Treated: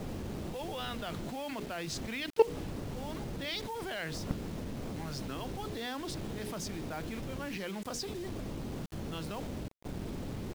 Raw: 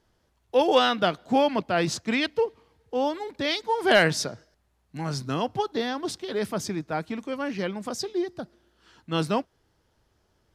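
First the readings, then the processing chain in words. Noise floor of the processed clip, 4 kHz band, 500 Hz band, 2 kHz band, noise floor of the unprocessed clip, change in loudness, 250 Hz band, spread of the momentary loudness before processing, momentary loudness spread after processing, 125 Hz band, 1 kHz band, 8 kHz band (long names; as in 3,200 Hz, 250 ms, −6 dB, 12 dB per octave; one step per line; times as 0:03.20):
−41 dBFS, −11.0 dB, −11.0 dB, −13.5 dB, −70 dBFS, −11.5 dB, −9.5 dB, 12 LU, 4 LU, −4.0 dB, −14.0 dB, −7.5 dB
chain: wind on the microphone 270 Hz −27 dBFS
mains-hum notches 60/120/180/240/300/360/420/480 Hz
brickwall limiter −15.5 dBFS, peak gain reduction 10 dB
output level in coarse steps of 21 dB
bit reduction 9 bits
dynamic equaliser 2,800 Hz, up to +4 dB, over −56 dBFS, Q 0.73
level +3 dB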